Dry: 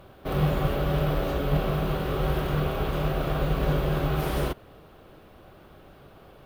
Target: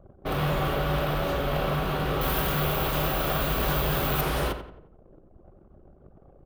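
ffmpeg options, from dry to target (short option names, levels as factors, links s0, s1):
-filter_complex "[0:a]asettb=1/sr,asplit=3[s0][s1][s2];[s0]atrim=end=2.214[s3];[s1]atrim=start=2.21:end=4.21,asetpts=PTS-STARTPTS,afade=t=in:d=0.004:c=qsin,afade=t=out:st=1.996:d=0.004:c=qsin,aemphasis=mode=production:type=50kf[s4];[s2]atrim=start=4.206[s5];[s3][s4]acrossfade=d=0.004:c1=hsin:c2=qsin[s6];[s6][s5]acrossfade=d=0.004:c1=qsin:c2=hsin,anlmdn=0.0631,acrossover=split=680[s7][s8];[s7]asoftclip=type=tanh:threshold=0.0335[s9];[s9][s8]amix=inputs=2:normalize=0,asplit=2[s10][s11];[s11]adelay=88,lowpass=f=2900:p=1,volume=0.355,asplit=2[s12][s13];[s13]adelay=88,lowpass=f=2900:p=1,volume=0.41,asplit=2[s14][s15];[s15]adelay=88,lowpass=f=2900:p=1,volume=0.41,asplit=2[s16][s17];[s17]adelay=88,lowpass=f=2900:p=1,volume=0.41,asplit=2[s18][s19];[s19]adelay=88,lowpass=f=2900:p=1,volume=0.41[s20];[s10][s12][s14][s16][s18][s20]amix=inputs=6:normalize=0,volume=1.5"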